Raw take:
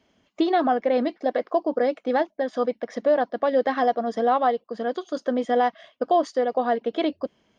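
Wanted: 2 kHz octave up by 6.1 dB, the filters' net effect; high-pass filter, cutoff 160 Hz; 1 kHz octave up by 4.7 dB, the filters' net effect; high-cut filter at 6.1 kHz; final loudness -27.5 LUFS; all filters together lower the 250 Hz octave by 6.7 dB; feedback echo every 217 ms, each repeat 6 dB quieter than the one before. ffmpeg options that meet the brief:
-af "highpass=160,lowpass=6100,equalizer=f=250:t=o:g=-8.5,equalizer=f=1000:t=o:g=7.5,equalizer=f=2000:t=o:g=5,aecho=1:1:217|434|651|868|1085|1302:0.501|0.251|0.125|0.0626|0.0313|0.0157,volume=0.473"

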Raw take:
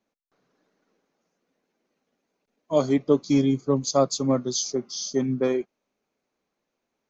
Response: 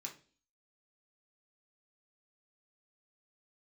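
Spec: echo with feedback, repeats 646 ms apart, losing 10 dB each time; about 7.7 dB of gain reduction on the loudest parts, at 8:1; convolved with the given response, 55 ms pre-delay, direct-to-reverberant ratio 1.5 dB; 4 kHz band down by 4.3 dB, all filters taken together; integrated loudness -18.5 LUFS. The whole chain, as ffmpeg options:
-filter_complex "[0:a]equalizer=f=4000:t=o:g=-5.5,acompressor=threshold=0.0794:ratio=8,aecho=1:1:646|1292|1938|2584:0.316|0.101|0.0324|0.0104,asplit=2[s0][s1];[1:a]atrim=start_sample=2205,adelay=55[s2];[s1][s2]afir=irnorm=-1:irlink=0,volume=1.19[s3];[s0][s3]amix=inputs=2:normalize=0,volume=2.51"

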